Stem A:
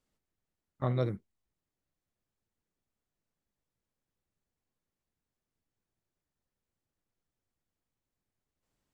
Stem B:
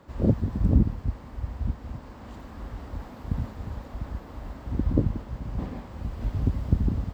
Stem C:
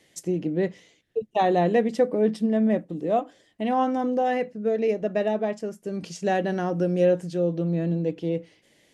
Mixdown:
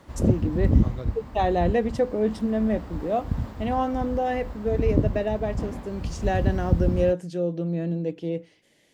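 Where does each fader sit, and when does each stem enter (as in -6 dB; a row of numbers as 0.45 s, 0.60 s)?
-6.5 dB, +1.5 dB, -2.0 dB; 0.00 s, 0.00 s, 0.00 s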